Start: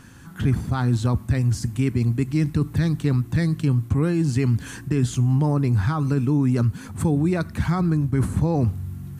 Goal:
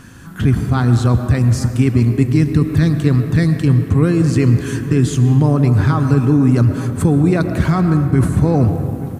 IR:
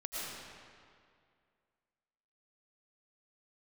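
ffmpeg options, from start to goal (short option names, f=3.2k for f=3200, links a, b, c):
-filter_complex "[0:a]bandreject=f=870:w=12,asplit=2[a][b];[b]adelay=874.6,volume=-16dB,highshelf=f=4k:g=-19.7[c];[a][c]amix=inputs=2:normalize=0,asplit=2[d][e];[1:a]atrim=start_sample=2205,lowshelf=f=200:g=-6,highshelf=f=2.5k:g=-11.5[f];[e][f]afir=irnorm=-1:irlink=0,volume=-4dB[g];[d][g]amix=inputs=2:normalize=0,volume=5dB"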